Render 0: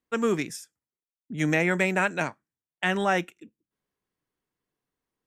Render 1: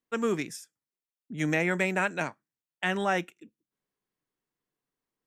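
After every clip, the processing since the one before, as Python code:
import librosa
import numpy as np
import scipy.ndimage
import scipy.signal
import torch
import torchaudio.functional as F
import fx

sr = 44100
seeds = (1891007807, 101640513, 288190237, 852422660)

y = fx.peak_eq(x, sr, hz=71.0, db=-14.5, octaves=0.45)
y = y * librosa.db_to_amplitude(-3.0)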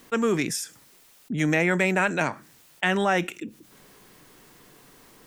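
y = fx.env_flatten(x, sr, amount_pct=50)
y = y * librosa.db_to_amplitude(3.5)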